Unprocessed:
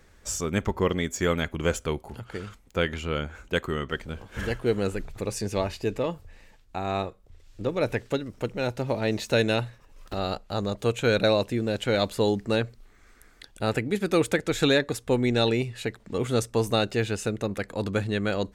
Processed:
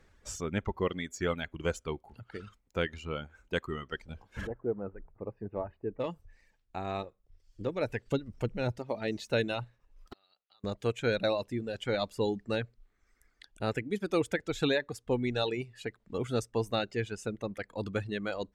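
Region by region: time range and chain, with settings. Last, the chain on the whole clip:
4.47–6.00 s: Bessel low-pass 970 Hz, order 4 + bass shelf 230 Hz -5 dB
8.06–8.79 s: bass shelf 220 Hz +9.5 dB + tape noise reduction on one side only encoder only
10.13–10.64 s: low-pass 4.1 kHz 24 dB/octave + differentiator + compression 8:1, threshold -49 dBFS
whole clip: treble shelf 8.1 kHz -11 dB; reverb removal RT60 1.8 s; trim -5.5 dB

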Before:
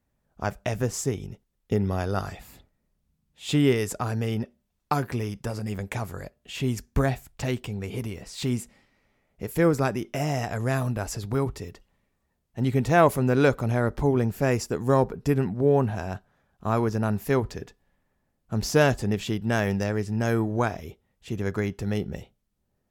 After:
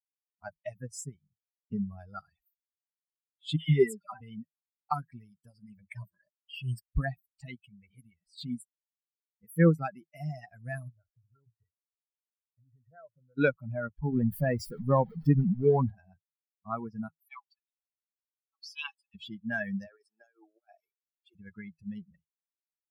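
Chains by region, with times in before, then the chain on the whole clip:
3.56–4.21 s: treble shelf 5.2 kHz -3 dB + comb 5.1 ms, depth 58% + phase dispersion lows, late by 124 ms, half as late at 1.5 kHz
5.95–6.89 s: companding laws mixed up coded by A + rippled EQ curve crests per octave 1.3, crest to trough 13 dB
10.89–13.38 s: peaking EQ 110 Hz +14 dB 0.38 oct + compression 8:1, threshold -23 dBFS + rippled Chebyshev low-pass 2 kHz, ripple 9 dB
14.12–15.91 s: jump at every zero crossing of -23.5 dBFS + treble shelf 3.2 kHz -8 dB
17.08–19.15 s: rippled Chebyshev high-pass 780 Hz, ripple 9 dB + comb 7 ms, depth 64%
19.86–21.35 s: high-pass 380 Hz 24 dB/octave + compressor with a negative ratio -32 dBFS, ratio -0.5 + comb of notches 1 kHz
whole clip: expander on every frequency bin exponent 3; graphic EQ with 31 bands 100 Hz -12 dB, 160 Hz +11 dB, 1.6 kHz +4 dB, 6.3 kHz -12 dB, 12.5 kHz -4 dB

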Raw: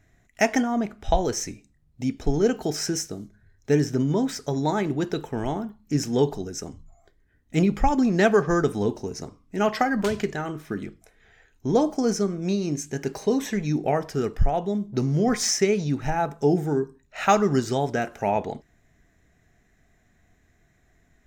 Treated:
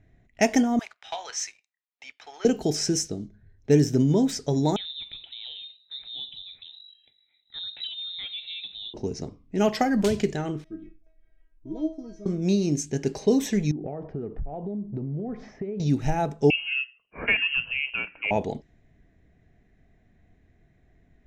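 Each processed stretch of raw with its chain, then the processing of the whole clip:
0.79–2.45 s: high-pass 1.1 kHz 24 dB/octave + treble shelf 3.1 kHz -7 dB + waveshaping leveller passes 2
4.76–8.94 s: compression 3:1, threshold -38 dBFS + frequency inversion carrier 3.9 kHz
10.64–12.26 s: tilt EQ -3 dB/octave + feedback comb 320 Hz, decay 0.3 s, mix 100%
13.71–15.80 s: low-pass 1.1 kHz + compression 12:1, threshold -30 dBFS
16.50–18.31 s: high-pass 160 Hz + frequency inversion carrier 3 kHz + distance through air 250 m
whole clip: peaking EQ 1.3 kHz -10.5 dB 1.4 oct; level-controlled noise filter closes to 2.5 kHz, open at -21.5 dBFS; trim +3 dB

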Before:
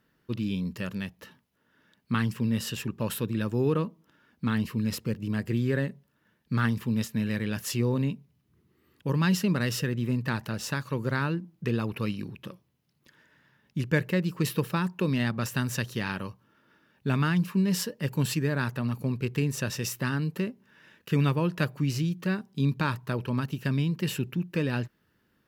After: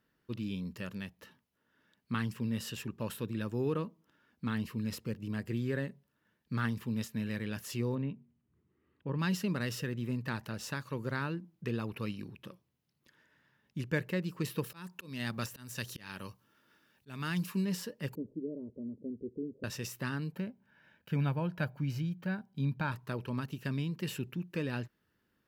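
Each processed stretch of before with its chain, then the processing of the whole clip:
7.95–9.19 s: distance through air 390 m + de-hum 118.5 Hz, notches 3
14.64–17.65 s: treble shelf 3.4 kHz +11 dB + slow attack 332 ms
18.15–19.64 s: steep low-pass 700 Hz 48 dB/octave + static phaser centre 320 Hz, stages 4
20.32–22.92 s: peaking EQ 7.6 kHz -11 dB 2.2 oct + comb 1.3 ms, depth 50%
whole clip: de-esser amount 60%; peaking EQ 150 Hz -2 dB 0.9 oct; trim -6.5 dB

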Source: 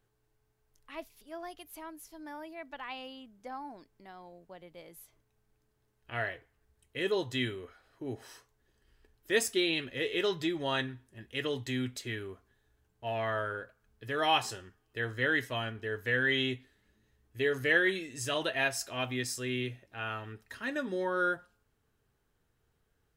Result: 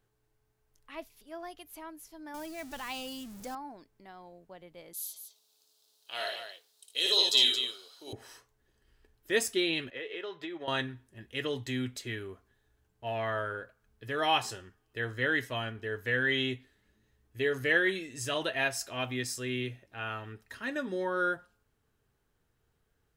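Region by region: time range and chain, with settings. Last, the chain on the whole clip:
2.34–3.55 s: jump at every zero crossing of -49 dBFS + tone controls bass +8 dB, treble +13 dB
4.93–8.13 s: high-pass 610 Hz + resonant high shelf 2.8 kHz +12.5 dB, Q 3 + multi-tap echo 56/76/223 ms -3/-6.5/-7.5 dB
9.90–10.68 s: three-band isolator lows -16 dB, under 330 Hz, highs -16 dB, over 3.5 kHz + compression 10:1, threshold -35 dBFS + transient shaper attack +1 dB, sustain -4 dB
whole clip: none

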